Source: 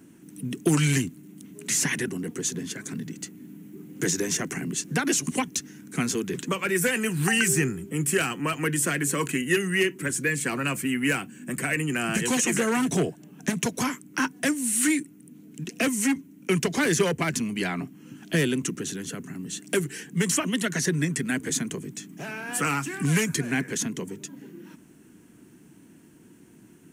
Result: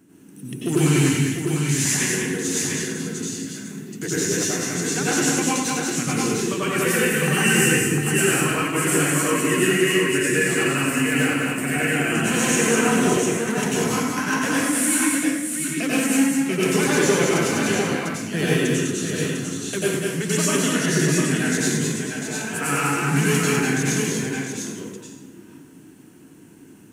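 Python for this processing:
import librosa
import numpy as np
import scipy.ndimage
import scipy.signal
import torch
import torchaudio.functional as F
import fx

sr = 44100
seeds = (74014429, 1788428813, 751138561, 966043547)

p1 = x + fx.echo_multitap(x, sr, ms=(200, 700), db=(-4.0, -5.0), dry=0)
p2 = fx.rev_plate(p1, sr, seeds[0], rt60_s=0.92, hf_ratio=0.85, predelay_ms=80, drr_db=-7.0)
y = p2 * 10.0 ** (-4.0 / 20.0)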